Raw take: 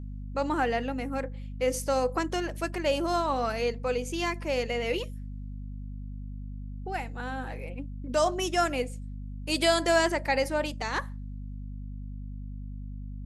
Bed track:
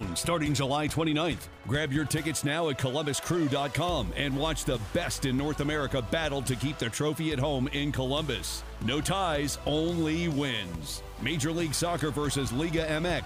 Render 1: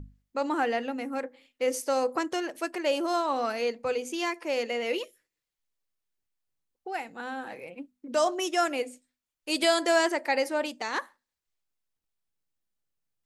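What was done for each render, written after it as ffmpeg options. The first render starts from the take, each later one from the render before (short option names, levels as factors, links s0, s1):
-af "bandreject=f=50:t=h:w=6,bandreject=f=100:t=h:w=6,bandreject=f=150:t=h:w=6,bandreject=f=200:t=h:w=6,bandreject=f=250:t=h:w=6"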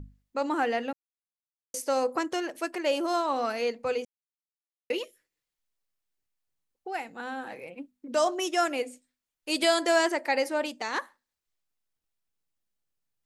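-filter_complex "[0:a]asplit=5[s0][s1][s2][s3][s4];[s0]atrim=end=0.93,asetpts=PTS-STARTPTS,afade=t=out:st=0.926:d=0.004:c=hsin[s5];[s1]atrim=start=0.93:end=1.74,asetpts=PTS-STARTPTS,volume=0[s6];[s2]atrim=start=1.74:end=4.05,asetpts=PTS-STARTPTS,afade=t=in:d=0.004:c=hsin,afade=t=out:st=2.306:d=0.004:c=hsin[s7];[s3]atrim=start=4.05:end=4.9,asetpts=PTS-STARTPTS,volume=0[s8];[s4]atrim=start=4.9,asetpts=PTS-STARTPTS,afade=t=in:d=0.004:c=hsin[s9];[s5][s6][s7][s8][s9]concat=n=5:v=0:a=1"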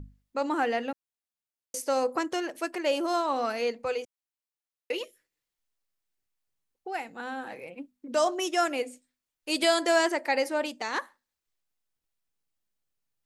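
-filter_complex "[0:a]asettb=1/sr,asplit=3[s0][s1][s2];[s0]atrim=end=3.854[s3];[s1]atrim=start=3.85:end=5.01,asetpts=PTS-STARTPTS,afade=t=in:d=0.004:c=qsin,afade=t=out:st=1.156:d=0.004:c=qsin,equalizer=f=180:w=1.5:g=-14.5[s4];[s2]atrim=start=5.006[s5];[s3][s4]acrossfade=d=0.004:c1=hsin:c2=qsin[s6];[s6][s5]acrossfade=d=0.004:c1=qsin:c2=hsin"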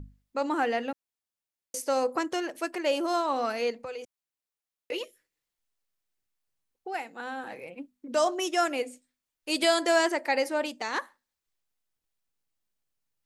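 -filter_complex "[0:a]asettb=1/sr,asplit=3[s0][s1][s2];[s0]atrim=end=3.704[s3];[s1]atrim=start=3.7:end=4.92,asetpts=PTS-STARTPTS,afade=t=in:d=0.004:c=qsin,afade=t=out:st=1.216:d=0.004:c=qsin,acompressor=threshold=0.02:ratio=6:attack=3.2:release=140:knee=1:detection=peak[s4];[s2]atrim=start=4.916[s5];[s3][s4]acrossfade=d=0.004:c1=hsin:c2=qsin[s6];[s6][s5]acrossfade=d=0.004:c1=qsin:c2=hsin,asettb=1/sr,asplit=3[s7][s8][s9];[s7]atrim=end=6.944[s10];[s8]atrim=start=6.94:end=7.44,asetpts=PTS-STARTPTS,afade=t=in:d=0.004:c=qsin,afade=t=out:st=0.496:d=0.004:c=qsin,highpass=240[s11];[s9]atrim=start=7.436[s12];[s10][s11]acrossfade=d=0.004:c1=hsin:c2=qsin[s13];[s13][s12]acrossfade=d=0.004:c1=qsin:c2=hsin"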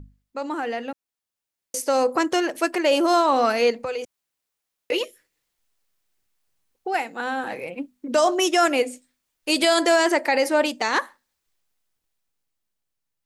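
-af "alimiter=limit=0.106:level=0:latency=1:release=26,dynaudnorm=f=370:g=9:m=2.99"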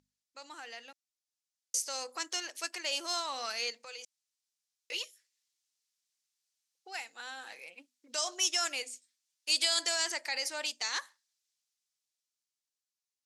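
-af "aeval=exprs='0.335*(cos(1*acos(clip(val(0)/0.335,-1,1)))-cos(1*PI/2))+0.00422*(cos(4*acos(clip(val(0)/0.335,-1,1)))-cos(4*PI/2))':c=same,bandpass=f=5800:t=q:w=1.4:csg=0"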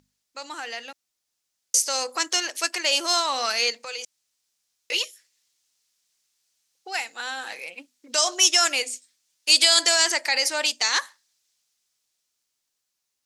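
-af "volume=3.98,alimiter=limit=0.708:level=0:latency=1"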